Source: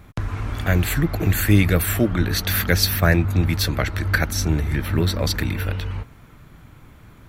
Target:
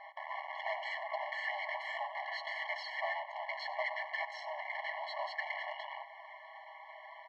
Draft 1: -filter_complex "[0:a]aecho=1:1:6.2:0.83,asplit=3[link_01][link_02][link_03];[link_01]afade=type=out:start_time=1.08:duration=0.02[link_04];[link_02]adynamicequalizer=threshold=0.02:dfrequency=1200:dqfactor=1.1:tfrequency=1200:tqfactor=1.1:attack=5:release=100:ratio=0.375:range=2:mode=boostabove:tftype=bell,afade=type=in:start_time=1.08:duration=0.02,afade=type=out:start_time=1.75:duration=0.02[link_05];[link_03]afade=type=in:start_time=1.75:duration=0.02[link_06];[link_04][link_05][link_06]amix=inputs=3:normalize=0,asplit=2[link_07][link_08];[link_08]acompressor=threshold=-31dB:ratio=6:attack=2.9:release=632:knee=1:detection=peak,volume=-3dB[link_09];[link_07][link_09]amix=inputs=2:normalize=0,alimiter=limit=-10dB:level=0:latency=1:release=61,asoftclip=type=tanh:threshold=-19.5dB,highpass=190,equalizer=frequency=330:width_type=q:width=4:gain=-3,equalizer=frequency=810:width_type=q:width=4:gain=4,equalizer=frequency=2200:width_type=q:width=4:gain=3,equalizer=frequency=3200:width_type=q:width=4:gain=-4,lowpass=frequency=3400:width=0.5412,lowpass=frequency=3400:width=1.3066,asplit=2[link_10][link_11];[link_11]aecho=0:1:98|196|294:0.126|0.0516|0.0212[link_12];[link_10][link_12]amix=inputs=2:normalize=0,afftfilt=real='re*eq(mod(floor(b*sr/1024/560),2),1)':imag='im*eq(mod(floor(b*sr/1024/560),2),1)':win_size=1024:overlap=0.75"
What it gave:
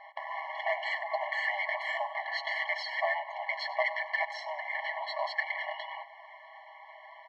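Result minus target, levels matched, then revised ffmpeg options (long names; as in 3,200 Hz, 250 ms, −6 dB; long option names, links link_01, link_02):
soft clipping: distortion −6 dB
-filter_complex "[0:a]aecho=1:1:6.2:0.83,asplit=3[link_01][link_02][link_03];[link_01]afade=type=out:start_time=1.08:duration=0.02[link_04];[link_02]adynamicequalizer=threshold=0.02:dfrequency=1200:dqfactor=1.1:tfrequency=1200:tqfactor=1.1:attack=5:release=100:ratio=0.375:range=2:mode=boostabove:tftype=bell,afade=type=in:start_time=1.08:duration=0.02,afade=type=out:start_time=1.75:duration=0.02[link_05];[link_03]afade=type=in:start_time=1.75:duration=0.02[link_06];[link_04][link_05][link_06]amix=inputs=3:normalize=0,asplit=2[link_07][link_08];[link_08]acompressor=threshold=-31dB:ratio=6:attack=2.9:release=632:knee=1:detection=peak,volume=-3dB[link_09];[link_07][link_09]amix=inputs=2:normalize=0,alimiter=limit=-10dB:level=0:latency=1:release=61,asoftclip=type=tanh:threshold=-29.5dB,highpass=190,equalizer=frequency=330:width_type=q:width=4:gain=-3,equalizer=frequency=810:width_type=q:width=4:gain=4,equalizer=frequency=2200:width_type=q:width=4:gain=3,equalizer=frequency=3200:width_type=q:width=4:gain=-4,lowpass=frequency=3400:width=0.5412,lowpass=frequency=3400:width=1.3066,asplit=2[link_10][link_11];[link_11]aecho=0:1:98|196|294:0.126|0.0516|0.0212[link_12];[link_10][link_12]amix=inputs=2:normalize=0,afftfilt=real='re*eq(mod(floor(b*sr/1024/560),2),1)':imag='im*eq(mod(floor(b*sr/1024/560),2),1)':win_size=1024:overlap=0.75"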